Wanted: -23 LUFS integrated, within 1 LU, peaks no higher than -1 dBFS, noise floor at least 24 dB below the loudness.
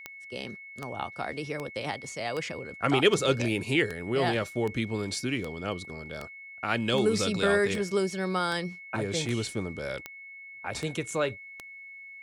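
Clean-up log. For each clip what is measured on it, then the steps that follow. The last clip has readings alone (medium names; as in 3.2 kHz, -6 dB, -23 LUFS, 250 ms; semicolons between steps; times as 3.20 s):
clicks found 16; steady tone 2.2 kHz; tone level -43 dBFS; loudness -29.5 LUFS; peak level -10.0 dBFS; loudness target -23.0 LUFS
-> de-click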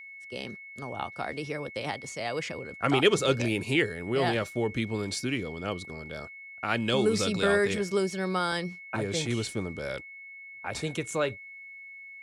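clicks found 0; steady tone 2.2 kHz; tone level -43 dBFS
-> band-stop 2.2 kHz, Q 30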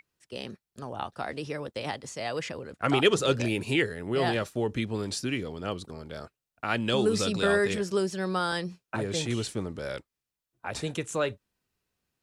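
steady tone not found; loudness -29.5 LUFS; peak level -10.0 dBFS; loudness target -23.0 LUFS
-> trim +6.5 dB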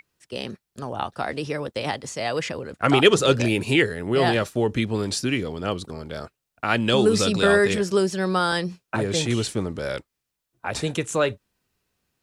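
loudness -23.0 LUFS; peak level -3.5 dBFS; noise floor -82 dBFS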